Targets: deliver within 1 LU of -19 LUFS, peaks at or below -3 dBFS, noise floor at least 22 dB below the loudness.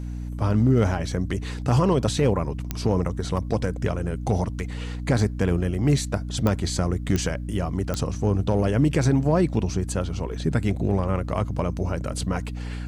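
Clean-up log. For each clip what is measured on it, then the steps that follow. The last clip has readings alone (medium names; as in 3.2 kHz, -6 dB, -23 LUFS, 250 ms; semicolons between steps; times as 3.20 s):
clicks found 4; hum 60 Hz; highest harmonic 300 Hz; hum level -29 dBFS; loudness -24.5 LUFS; peak level -10.0 dBFS; loudness target -19.0 LUFS
-> de-click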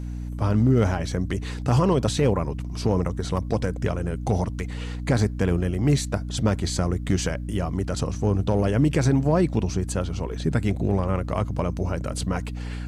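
clicks found 0; hum 60 Hz; highest harmonic 300 Hz; hum level -29 dBFS
-> de-hum 60 Hz, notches 5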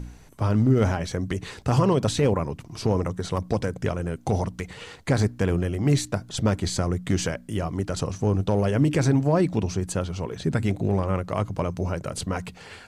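hum not found; loudness -25.0 LUFS; peak level -10.5 dBFS; loudness target -19.0 LUFS
-> trim +6 dB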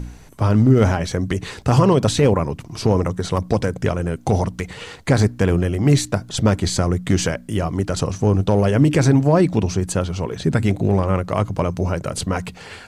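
loudness -19.0 LUFS; peak level -4.5 dBFS; noise floor -42 dBFS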